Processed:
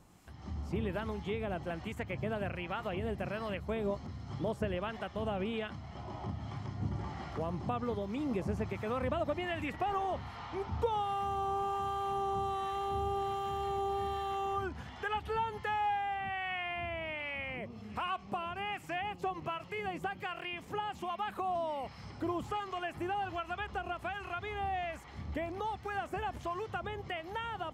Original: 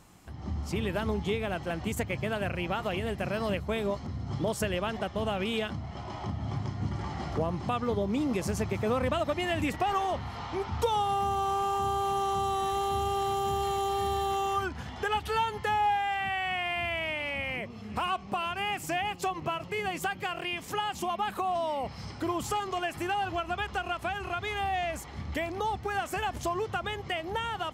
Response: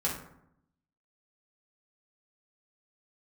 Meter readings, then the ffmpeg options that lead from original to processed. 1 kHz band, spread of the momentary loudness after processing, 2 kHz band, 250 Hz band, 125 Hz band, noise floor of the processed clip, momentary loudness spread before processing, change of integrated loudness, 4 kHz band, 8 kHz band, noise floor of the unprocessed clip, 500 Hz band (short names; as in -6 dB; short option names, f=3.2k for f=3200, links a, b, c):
-5.5 dB, 6 LU, -6.5 dB, -5.5 dB, -5.5 dB, -50 dBFS, 6 LU, -5.5 dB, -9.0 dB, under -15 dB, -43 dBFS, -5.0 dB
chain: -filter_complex "[0:a]acrossover=split=950[a][b];[a]aeval=exprs='val(0)*(1-0.5/2+0.5/2*cos(2*PI*1.3*n/s))':c=same[c];[b]aeval=exprs='val(0)*(1-0.5/2-0.5/2*cos(2*PI*1.3*n/s))':c=same[d];[c][d]amix=inputs=2:normalize=0,acrossover=split=3100[e][f];[f]acompressor=threshold=-57dB:ratio=4:attack=1:release=60[g];[e][g]amix=inputs=2:normalize=0,volume=-3dB"